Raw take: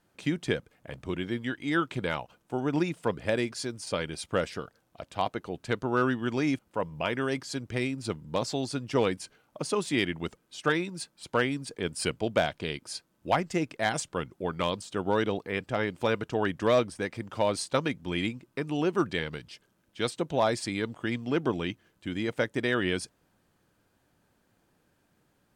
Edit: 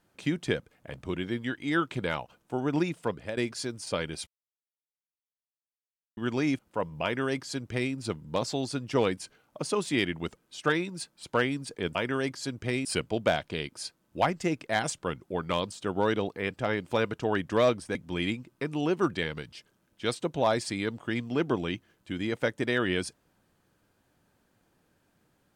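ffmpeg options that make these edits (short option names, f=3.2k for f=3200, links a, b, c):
-filter_complex "[0:a]asplit=7[a][b][c][d][e][f][g];[a]atrim=end=3.37,asetpts=PTS-STARTPTS,afade=t=out:st=2.8:d=0.57:c=qsin:silence=0.281838[h];[b]atrim=start=3.37:end=4.27,asetpts=PTS-STARTPTS,afade=t=in:d=0.004:c=hsin:silence=0.281838,afade=t=out:st=0.896:d=0.004:c=hsin[i];[c]atrim=start=4.27:end=6.17,asetpts=PTS-STARTPTS,volume=0[j];[d]atrim=start=6.17:end=11.952,asetpts=PTS-STARTPTS,afade=t=in:d=0.004:c=hsin[k];[e]atrim=start=7.028:end=7.932[l];[f]atrim=start=11.948:end=17.052[m];[g]atrim=start=17.908[n];[h][i][j][k]concat=n=4:v=0:a=1[o];[o][l]acrossfade=d=0.004:c1=hsin:c2=hsin[p];[p][m]acrossfade=d=0.004:c1=hsin:c2=hsin[q];[q][n]acrossfade=d=0.004:c1=hsin:c2=hsin"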